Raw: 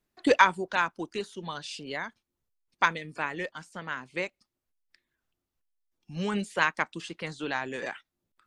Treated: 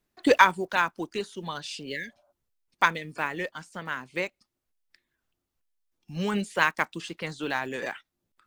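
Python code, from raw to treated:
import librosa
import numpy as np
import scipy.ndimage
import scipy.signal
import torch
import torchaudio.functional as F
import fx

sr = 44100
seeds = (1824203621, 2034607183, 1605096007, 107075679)

y = fx.block_float(x, sr, bits=7)
y = fx.spec_repair(y, sr, seeds[0], start_s=1.9, length_s=0.39, low_hz=560.0, high_hz=1600.0, source='before')
y = F.gain(torch.from_numpy(y), 2.0).numpy()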